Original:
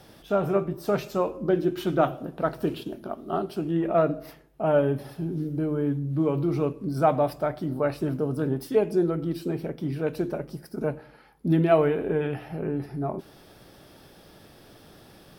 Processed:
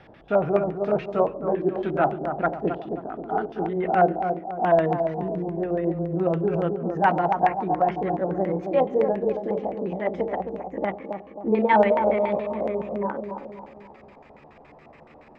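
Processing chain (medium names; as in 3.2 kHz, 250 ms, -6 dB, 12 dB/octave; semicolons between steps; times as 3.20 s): pitch bend over the whole clip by +7 st starting unshifted; bucket-brigade echo 267 ms, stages 2048, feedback 45%, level -6.5 dB; LFO low-pass square 7.1 Hz 770–2200 Hz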